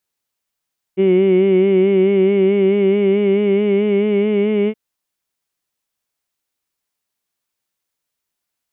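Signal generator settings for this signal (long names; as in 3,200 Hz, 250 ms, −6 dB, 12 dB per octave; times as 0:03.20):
vowel from formants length 3.77 s, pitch 187 Hz, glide +2 semitones, vibrato 4.6 Hz, vibrato depth 0.6 semitones, F1 370 Hz, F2 2,200 Hz, F3 2,900 Hz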